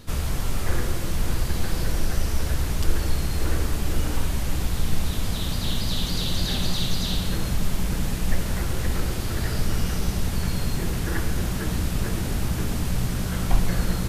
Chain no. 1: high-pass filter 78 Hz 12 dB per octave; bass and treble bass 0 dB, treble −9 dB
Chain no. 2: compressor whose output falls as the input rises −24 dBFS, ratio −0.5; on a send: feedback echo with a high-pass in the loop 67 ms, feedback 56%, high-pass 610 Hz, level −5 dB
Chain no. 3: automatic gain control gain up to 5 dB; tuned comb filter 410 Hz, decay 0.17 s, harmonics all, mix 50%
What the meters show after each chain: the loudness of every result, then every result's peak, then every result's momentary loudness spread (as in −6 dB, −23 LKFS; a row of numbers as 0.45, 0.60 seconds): −30.0, −27.0, −28.0 LKFS; −15.5, −9.5, −7.0 dBFS; 3, 6, 3 LU